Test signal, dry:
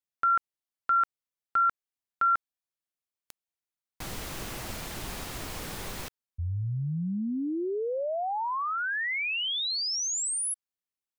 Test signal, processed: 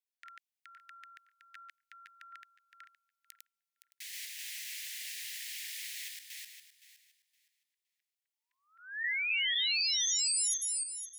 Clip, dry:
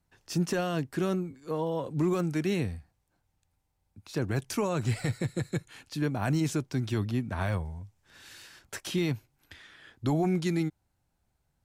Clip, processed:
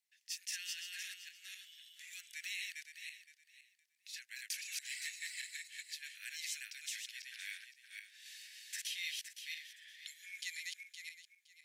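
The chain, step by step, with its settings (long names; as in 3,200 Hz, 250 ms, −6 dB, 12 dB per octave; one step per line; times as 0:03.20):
feedback delay that plays each chunk backwards 258 ms, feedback 44%, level −1.5 dB
Butterworth high-pass 1,800 Hz 72 dB per octave
level −3 dB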